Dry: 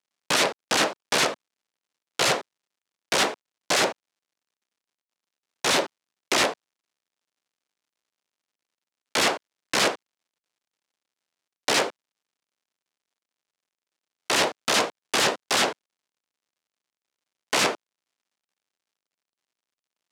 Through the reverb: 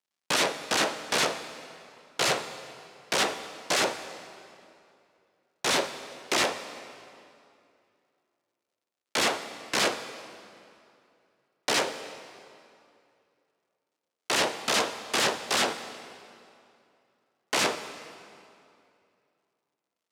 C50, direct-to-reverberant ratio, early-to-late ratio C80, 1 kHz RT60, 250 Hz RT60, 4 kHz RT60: 10.5 dB, 9.5 dB, 11.5 dB, 2.5 s, 2.6 s, 2.0 s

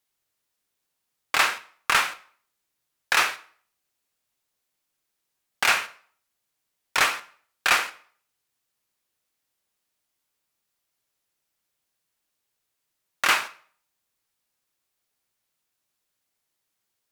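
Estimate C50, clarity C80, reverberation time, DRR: 17.0 dB, 20.5 dB, 0.50 s, 10.5 dB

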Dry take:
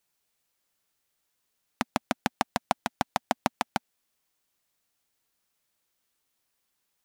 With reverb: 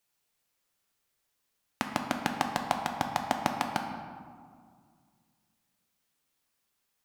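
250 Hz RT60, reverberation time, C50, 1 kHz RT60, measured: 2.5 s, 2.0 s, 5.0 dB, 2.0 s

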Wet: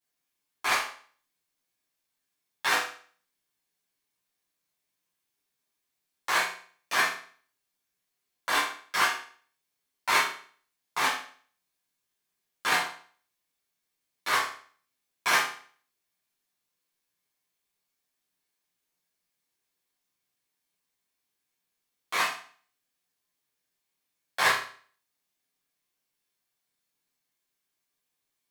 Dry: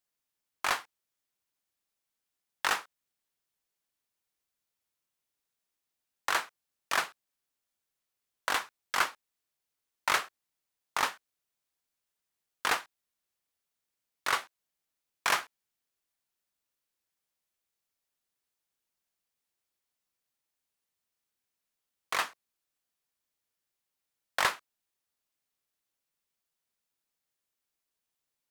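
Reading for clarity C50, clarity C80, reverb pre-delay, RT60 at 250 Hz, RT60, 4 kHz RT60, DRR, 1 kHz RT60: 5.0 dB, 9.5 dB, 8 ms, 0.45 s, 0.50 s, 0.45 s, -10.5 dB, 0.45 s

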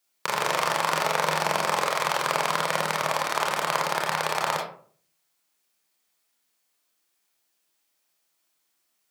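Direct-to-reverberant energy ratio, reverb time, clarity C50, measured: -2.0 dB, 0.50 s, 4.5 dB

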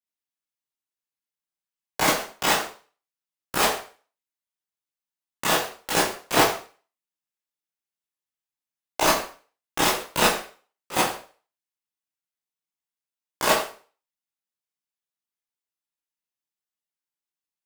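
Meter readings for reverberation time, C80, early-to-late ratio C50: 0.40 s, 9.5 dB, 4.0 dB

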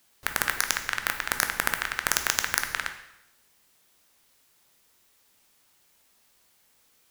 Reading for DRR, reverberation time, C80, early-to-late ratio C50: 6.0 dB, 0.85 s, 12.0 dB, 9.5 dB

